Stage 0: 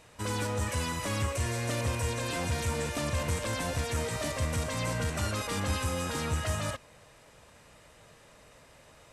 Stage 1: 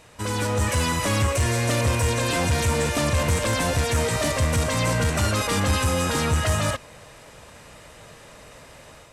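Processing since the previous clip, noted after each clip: AGC gain up to 5 dB; soft clip -18.5 dBFS, distortion -20 dB; gain +5.5 dB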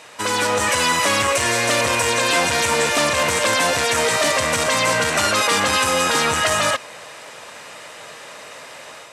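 weighting filter A; in parallel at -1 dB: limiter -21 dBFS, peak gain reduction 7.5 dB; on the sum: gain +4 dB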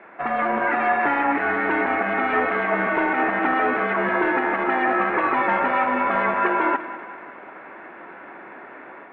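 mistuned SSB -270 Hz 590–2300 Hz; split-band echo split 570 Hz, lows 0.136 s, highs 0.189 s, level -13 dB

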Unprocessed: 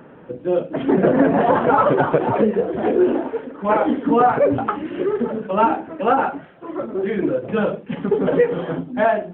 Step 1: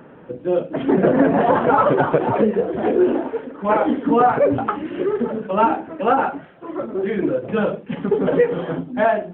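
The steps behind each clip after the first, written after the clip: nothing audible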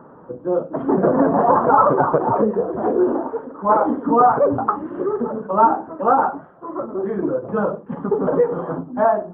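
resonant high shelf 1700 Hz -14 dB, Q 3; gain -2 dB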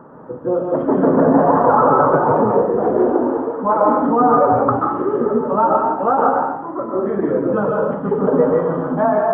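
compressor 2:1, threshold -17 dBFS, peak gain reduction 5 dB; plate-style reverb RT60 0.79 s, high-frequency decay 0.95×, pre-delay 0.12 s, DRR -1 dB; gain +2 dB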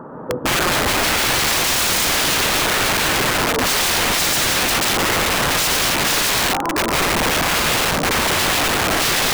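in parallel at -3 dB: limiter -13 dBFS, peak gain reduction 11 dB; on the sum: wrapped overs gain 15 dB; gain +2 dB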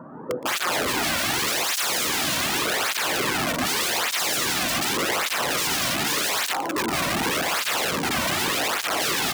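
feedback echo 0.118 s, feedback 24%, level -17 dB; tape flanging out of phase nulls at 0.85 Hz, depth 2.5 ms; gain -3.5 dB

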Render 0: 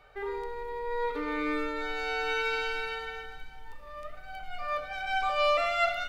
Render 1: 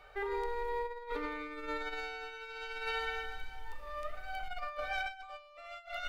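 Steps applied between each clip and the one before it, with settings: bell 170 Hz -9 dB 1.4 oct; negative-ratio compressor -36 dBFS, ratio -0.5; gain -2.5 dB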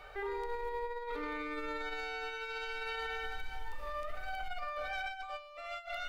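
limiter -36 dBFS, peak gain reduction 11 dB; gain +5 dB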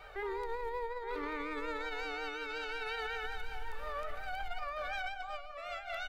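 vibrato 5.5 Hz 61 cents; outdoor echo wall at 150 m, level -9 dB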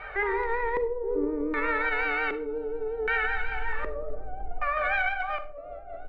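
LFO low-pass square 0.65 Hz 400–2000 Hz; reverb RT60 0.35 s, pre-delay 38 ms, DRR 11 dB; gain +8.5 dB

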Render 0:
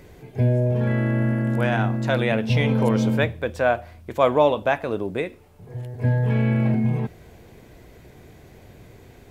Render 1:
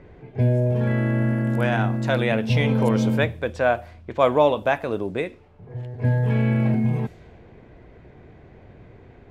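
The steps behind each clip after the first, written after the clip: low-pass opened by the level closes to 1900 Hz, open at -20 dBFS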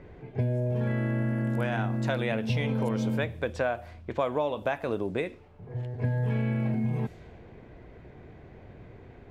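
compressor, threshold -23 dBFS, peak gain reduction 10.5 dB; gain -1.5 dB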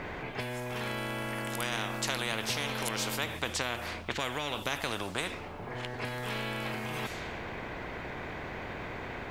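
spectral compressor 4:1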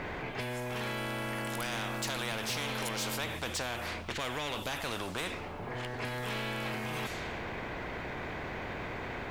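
soft clip -30.5 dBFS, distortion -11 dB; gain +1.5 dB

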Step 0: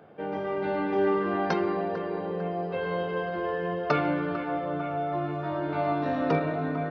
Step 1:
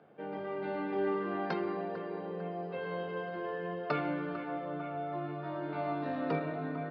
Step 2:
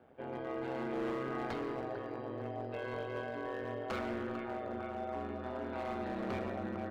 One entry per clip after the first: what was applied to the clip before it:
Chebyshev band-pass 110–4800 Hz, order 4; gain -7 dB
ring modulator 63 Hz; hard clip -34 dBFS, distortion -12 dB; reverb RT60 0.65 s, pre-delay 80 ms, DRR 12 dB; gain +1 dB

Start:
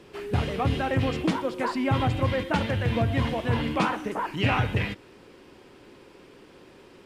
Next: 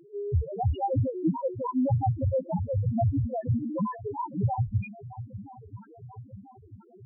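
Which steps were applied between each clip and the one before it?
swung echo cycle 0.988 s, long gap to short 1.5:1, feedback 56%, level -14 dB; reverb removal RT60 0.83 s; loudest bins only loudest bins 1; gain +8 dB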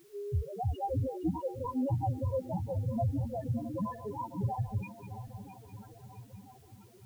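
regenerating reverse delay 0.33 s, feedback 66%, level -13 dB; in parallel at -10 dB: requantised 8-bit, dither triangular; on the sum: gain -8.5 dB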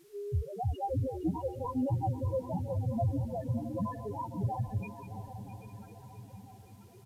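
downsampling 32000 Hz; swung echo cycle 1.048 s, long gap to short 3:1, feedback 31%, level -14.5 dB

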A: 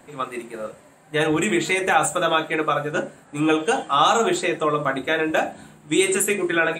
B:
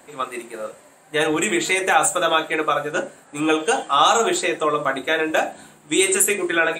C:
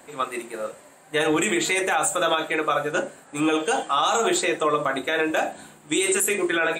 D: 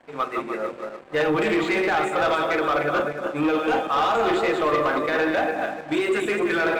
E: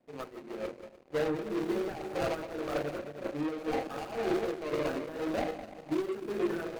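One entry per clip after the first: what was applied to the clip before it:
tone controls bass -9 dB, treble +4 dB; gain +1.5 dB
limiter -12 dBFS, peak gain reduction 9.5 dB
regenerating reverse delay 0.149 s, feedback 53%, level -5 dB; LPF 2200 Hz 12 dB/oct; sample leveller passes 2; gain -5 dB
median filter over 41 samples; tremolo triangle 1.9 Hz, depth 70%; gain -5.5 dB

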